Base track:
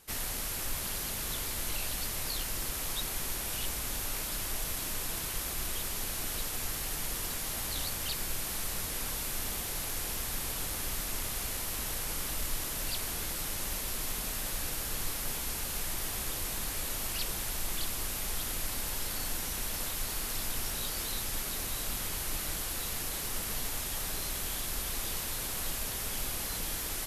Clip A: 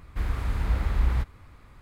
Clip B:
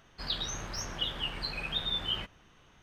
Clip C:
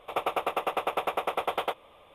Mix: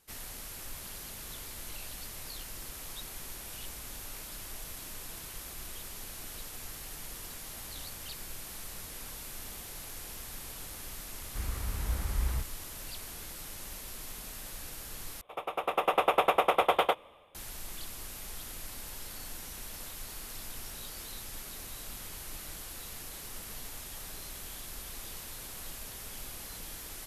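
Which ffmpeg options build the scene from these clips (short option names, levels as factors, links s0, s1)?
-filter_complex "[0:a]volume=0.398[s0];[3:a]dynaudnorm=f=150:g=7:m=5.62[s1];[s0]asplit=2[s2][s3];[s2]atrim=end=15.214[s4];[s1]atrim=end=2.14,asetpts=PTS-STARTPTS,volume=0.335[s5];[s3]atrim=start=17.346[s6];[1:a]atrim=end=1.81,asetpts=PTS-STARTPTS,volume=0.398,afade=t=in:d=0.004:c=hsin,afade=t=out:st=1.806:d=0.004:c=hsin,adelay=11190[s7];[s4][s5]acrossfade=d=0.004:c1=hsin:c2=hsin[s8];[s8][s6]acrossfade=d=0.004:c1=hsin:c2=hsin[s9];[s9][s7]amix=inputs=2:normalize=0"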